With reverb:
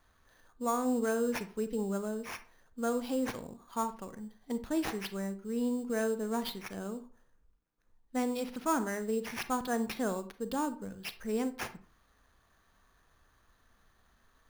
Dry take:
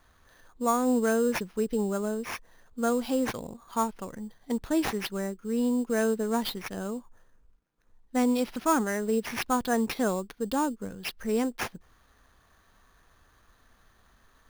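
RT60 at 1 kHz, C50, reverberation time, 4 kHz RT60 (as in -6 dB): 0.40 s, 14.0 dB, 0.40 s, 0.25 s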